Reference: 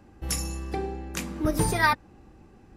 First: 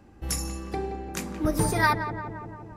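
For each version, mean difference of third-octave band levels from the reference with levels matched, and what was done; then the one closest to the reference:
4.5 dB: on a send: feedback echo with a low-pass in the loop 173 ms, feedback 72%, low-pass 1,500 Hz, level −8.5 dB
on the sum: dynamic equaliser 3,000 Hz, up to −5 dB, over −46 dBFS, Q 1.8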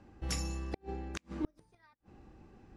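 12.0 dB: low-pass filter 6,600 Hz 12 dB per octave
gate with flip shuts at −17 dBFS, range −39 dB
level −4.5 dB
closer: first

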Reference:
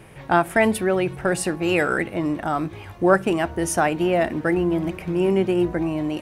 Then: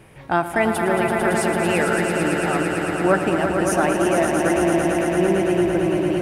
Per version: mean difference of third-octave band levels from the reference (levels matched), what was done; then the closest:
8.0 dB: echo that builds up and dies away 112 ms, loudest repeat 5, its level −7 dB
level −2 dB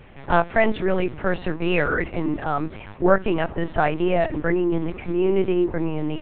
5.5 dB: linear-prediction vocoder at 8 kHz pitch kept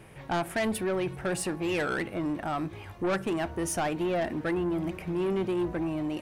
2.5 dB: soft clipping −18.5 dBFS, distortion −10 dB
level −5 dB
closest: third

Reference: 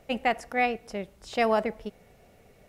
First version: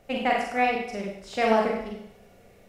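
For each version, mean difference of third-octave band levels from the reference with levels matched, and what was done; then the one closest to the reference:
5.0 dB: four-comb reverb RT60 0.73 s, combs from 32 ms, DRR −1.5 dB
highs frequency-modulated by the lows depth 0.16 ms
level −1.5 dB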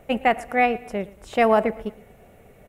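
2.0 dB: parametric band 4,900 Hz −13 dB 0.91 octaves
repeating echo 115 ms, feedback 48%, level −21 dB
level +6.5 dB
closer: second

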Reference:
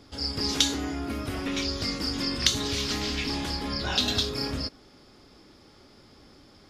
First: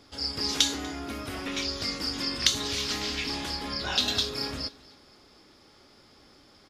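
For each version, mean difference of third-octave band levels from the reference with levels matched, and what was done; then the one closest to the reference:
2.0 dB: low-shelf EQ 390 Hz −7 dB
repeating echo 242 ms, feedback 49%, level −23 dB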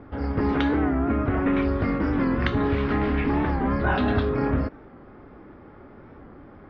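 9.5 dB: low-pass filter 1,800 Hz 24 dB per octave
wow of a warped record 45 rpm, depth 100 cents
level +9 dB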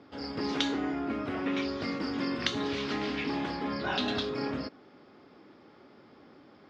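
6.0 dB: band-pass filter 180–2,200 Hz
level +1 dB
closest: first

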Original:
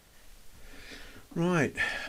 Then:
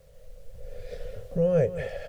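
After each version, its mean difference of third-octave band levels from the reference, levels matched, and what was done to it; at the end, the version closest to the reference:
10.0 dB: camcorder AGC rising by 6.5 dB per second
drawn EQ curve 150 Hz 0 dB, 310 Hz −30 dB, 510 Hz +11 dB, 870 Hz −19 dB
on a send: single-tap delay 203 ms −12.5 dB
on the sum: bit reduction 12 bits
level +6 dB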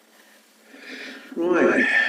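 7.5 dB: spectral envelope exaggerated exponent 1.5
Chebyshev high-pass filter 220 Hz, order 6
in parallel at −3.5 dB: soft clipping −26.5 dBFS, distortion −13 dB
on the sum: reverb whose tail is shaped and stops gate 180 ms rising, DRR −2.5 dB
level +4.5 dB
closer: second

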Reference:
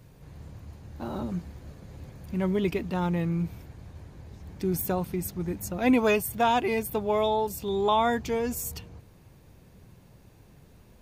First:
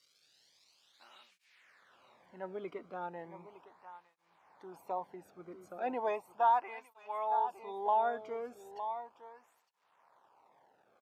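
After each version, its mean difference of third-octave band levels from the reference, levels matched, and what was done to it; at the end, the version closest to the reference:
11.5 dB: bit reduction 9 bits
band-pass filter sweep 4,500 Hz → 920 Hz, 0:00.70–0:02.48
on a send: single-tap delay 910 ms −11.5 dB
on the sum: through-zero flanger with one copy inverted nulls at 0.36 Hz, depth 1.2 ms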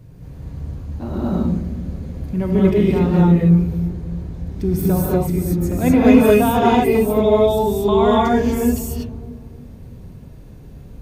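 6.5 dB: low-shelf EQ 490 Hz +11.5 dB
notch filter 850 Hz, Q 24
on a send: delay with a low-pass on its return 310 ms, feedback 44%, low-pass 420 Hz, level −10 dB
on the sum: reverb whose tail is shaped and stops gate 270 ms rising, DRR −5 dB
level −1.5 dB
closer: second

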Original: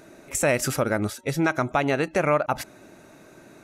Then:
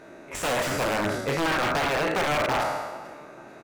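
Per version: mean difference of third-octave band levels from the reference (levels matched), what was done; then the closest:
9.0 dB: peak hold with a decay on every bin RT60 1.13 s
repeating echo 441 ms, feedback 38%, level −22 dB
wrap-around overflow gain 15.5 dB
mid-hump overdrive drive 9 dB, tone 1,400 Hz, clips at −15.5 dBFS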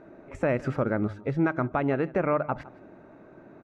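7.0 dB: low-pass filter 1,300 Hz 12 dB per octave
on a send: single-tap delay 161 ms −21 dB
on the sum: dynamic equaliser 740 Hz, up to −5 dB, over −35 dBFS, Q 1.2
mains-hum notches 50/100/150 Hz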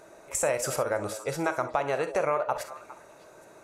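4.5 dB: graphic EQ with 10 bands 250 Hz −9 dB, 500 Hz +8 dB, 1,000 Hz +8 dB, 8,000 Hz +6 dB
downward compressor 2 to 1, threshold −19 dBFS, peak gain reduction 6 dB
echo through a band-pass that steps 204 ms, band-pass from 490 Hz, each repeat 1.4 octaves, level −11 dB
reverb whose tail is shaped and stops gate 80 ms rising, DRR 10 dB
level −7 dB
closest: third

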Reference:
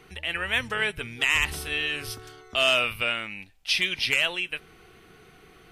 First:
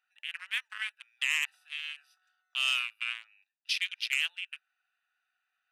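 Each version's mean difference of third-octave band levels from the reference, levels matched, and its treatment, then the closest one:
14.0 dB: adaptive Wiener filter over 41 samples
Bessel high-pass filter 1,800 Hz, order 8
level −3.5 dB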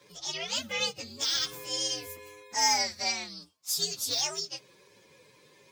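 8.0 dB: partials spread apart or drawn together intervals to 129%
high-pass filter 90 Hz 24 dB per octave
low-shelf EQ 130 Hz −11.5 dB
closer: second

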